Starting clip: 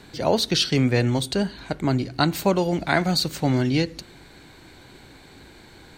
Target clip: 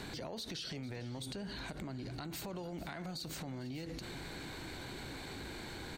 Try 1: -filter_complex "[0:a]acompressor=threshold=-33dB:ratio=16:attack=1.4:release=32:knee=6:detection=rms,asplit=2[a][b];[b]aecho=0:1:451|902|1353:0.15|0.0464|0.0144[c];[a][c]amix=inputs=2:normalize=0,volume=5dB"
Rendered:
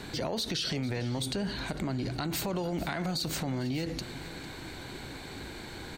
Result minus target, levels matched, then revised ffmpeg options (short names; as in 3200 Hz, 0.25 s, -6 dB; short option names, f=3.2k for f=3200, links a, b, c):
compressor: peak gain reduction -11 dB
-filter_complex "[0:a]acompressor=threshold=-44.5dB:ratio=16:attack=1.4:release=32:knee=6:detection=rms,asplit=2[a][b];[b]aecho=0:1:451|902|1353:0.15|0.0464|0.0144[c];[a][c]amix=inputs=2:normalize=0,volume=5dB"